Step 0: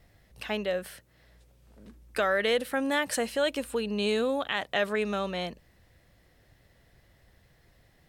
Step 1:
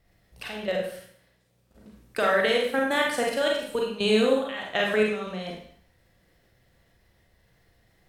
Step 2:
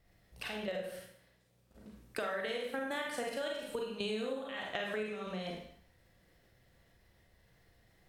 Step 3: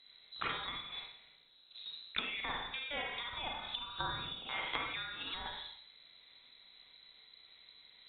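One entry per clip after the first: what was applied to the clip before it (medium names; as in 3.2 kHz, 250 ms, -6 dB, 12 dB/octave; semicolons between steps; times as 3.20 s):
level held to a coarse grid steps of 14 dB; Schroeder reverb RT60 0.58 s, combs from 33 ms, DRR -1.5 dB; trim +3.5 dB
compression 5:1, threshold -32 dBFS, peak gain reduction 14 dB; trim -3.5 dB
frequency inversion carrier 4 kHz; low-pass that closes with the level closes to 1.7 kHz, closed at -36 dBFS; trim +5.5 dB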